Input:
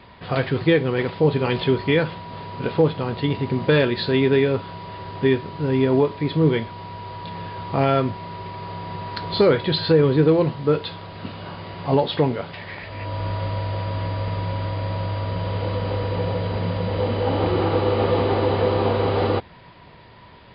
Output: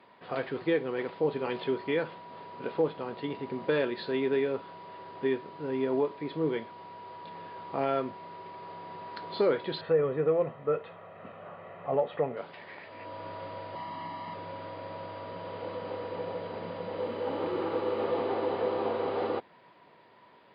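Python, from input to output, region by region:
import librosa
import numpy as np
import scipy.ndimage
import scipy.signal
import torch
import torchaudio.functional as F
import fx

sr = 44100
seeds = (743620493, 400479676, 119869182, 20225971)

y = fx.chain(x, sr, fx.lowpass(hz=2500.0, slope=24),
    fx.comb(ms=1.6, depth=0.6), at=(9.81, 12.37))
y = fx.chain(y, sr, fx.highpass(hz=130.0, slope=24),
    fx.comb(ms=1.0, depth=0.8), at=(13.75, 14.34))
y = fx.chain(y, sr, fx.notch(hz=730.0, q=5.9),
    fx.quant_float(bits=6), at=(17.0, 18.05))
y = scipy.signal.sosfilt(scipy.signal.butter(2, 290.0, 'highpass', fs=sr, output='sos'), y)
y = fx.high_shelf(y, sr, hz=3100.0, db=-11.0)
y = y * librosa.db_to_amplitude(-8.0)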